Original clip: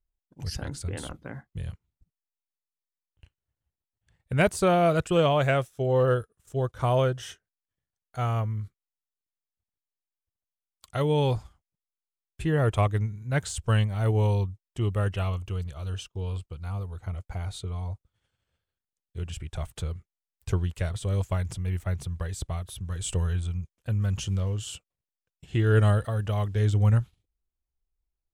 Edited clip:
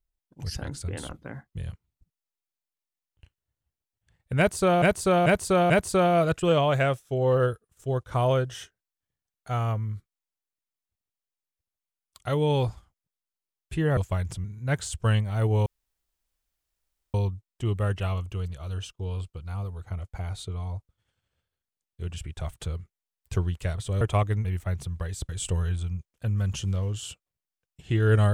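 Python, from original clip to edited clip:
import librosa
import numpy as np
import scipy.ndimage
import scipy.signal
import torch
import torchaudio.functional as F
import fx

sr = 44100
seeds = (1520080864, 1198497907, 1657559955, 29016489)

y = fx.edit(x, sr, fx.repeat(start_s=4.38, length_s=0.44, count=4),
    fx.swap(start_s=12.65, length_s=0.43, other_s=21.17, other_length_s=0.47),
    fx.insert_room_tone(at_s=14.3, length_s=1.48),
    fx.cut(start_s=22.49, length_s=0.44), tone=tone)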